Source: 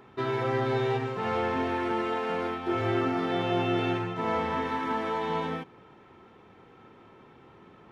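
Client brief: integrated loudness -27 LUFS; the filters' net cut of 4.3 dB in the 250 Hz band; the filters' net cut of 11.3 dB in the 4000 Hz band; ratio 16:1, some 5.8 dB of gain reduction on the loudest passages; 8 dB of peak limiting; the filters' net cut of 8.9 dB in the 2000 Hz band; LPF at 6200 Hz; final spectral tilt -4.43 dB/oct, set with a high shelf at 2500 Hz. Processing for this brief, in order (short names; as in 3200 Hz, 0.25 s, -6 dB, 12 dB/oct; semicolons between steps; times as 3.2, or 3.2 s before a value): LPF 6200 Hz; bell 250 Hz -6 dB; bell 2000 Hz -7 dB; high shelf 2500 Hz -4.5 dB; bell 4000 Hz -8 dB; compressor 16:1, threshold -31 dBFS; gain +13.5 dB; limiter -18.5 dBFS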